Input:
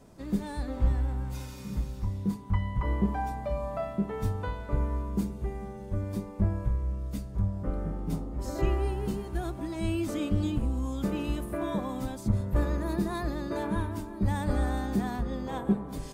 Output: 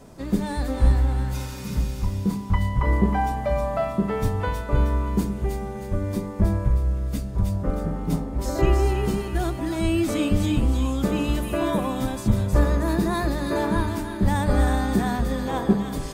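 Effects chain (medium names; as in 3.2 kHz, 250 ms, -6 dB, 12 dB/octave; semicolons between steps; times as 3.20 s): hum notches 50/100/150/200/250/300/350 Hz; on a send: feedback echo behind a high-pass 315 ms, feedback 43%, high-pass 1.7 kHz, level -4 dB; on the sum: trim +8.5 dB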